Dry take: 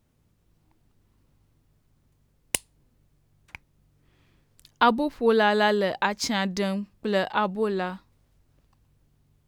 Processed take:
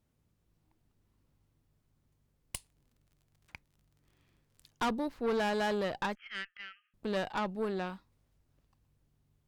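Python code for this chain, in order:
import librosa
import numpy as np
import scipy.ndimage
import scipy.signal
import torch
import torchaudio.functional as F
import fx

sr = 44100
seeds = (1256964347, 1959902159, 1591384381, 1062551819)

y = fx.brickwall_bandpass(x, sr, low_hz=1200.0, high_hz=3300.0, at=(6.15, 6.94))
y = fx.tube_stage(y, sr, drive_db=21.0, bias=0.55)
y = fx.dmg_crackle(y, sr, seeds[0], per_s=49.0, level_db=-51.0, at=(2.55, 4.9), fade=0.02)
y = y * librosa.db_to_amplitude(-5.5)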